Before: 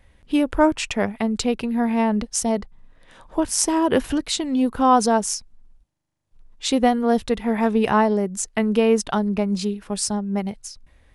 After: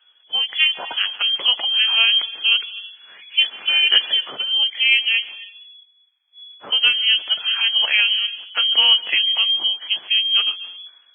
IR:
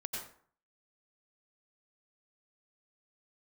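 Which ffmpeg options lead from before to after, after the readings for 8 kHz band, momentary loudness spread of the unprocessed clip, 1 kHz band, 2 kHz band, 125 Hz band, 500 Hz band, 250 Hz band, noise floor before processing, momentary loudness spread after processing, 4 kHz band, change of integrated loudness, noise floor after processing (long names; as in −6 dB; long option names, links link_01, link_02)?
below −40 dB, 8 LU, −13.0 dB, +11.5 dB, below −30 dB, −21.5 dB, below −30 dB, −58 dBFS, 9 LU, +20.0 dB, +5.0 dB, −57 dBFS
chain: -filter_complex "[0:a]asplit=2[link_01][link_02];[1:a]atrim=start_sample=2205,adelay=147[link_03];[link_02][link_03]afir=irnorm=-1:irlink=0,volume=-18.5dB[link_04];[link_01][link_04]amix=inputs=2:normalize=0,lowpass=frequency=2900:width_type=q:width=0.5098,lowpass=frequency=2900:width_type=q:width=0.6013,lowpass=frequency=2900:width_type=q:width=0.9,lowpass=frequency=2900:width_type=q:width=2.563,afreqshift=-3400,highpass=210,dynaudnorm=framelen=350:gausssize=3:maxgain=10.5dB,volume=-3dB" -ar 16000 -c:a libvorbis -b:a 16k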